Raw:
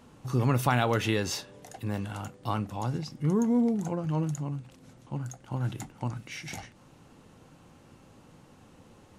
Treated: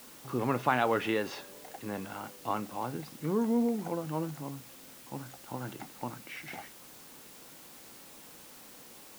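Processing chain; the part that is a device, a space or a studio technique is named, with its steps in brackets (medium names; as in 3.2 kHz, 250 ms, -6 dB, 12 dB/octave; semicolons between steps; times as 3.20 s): wax cylinder (band-pass 260–2600 Hz; wow and flutter; white noise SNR 17 dB)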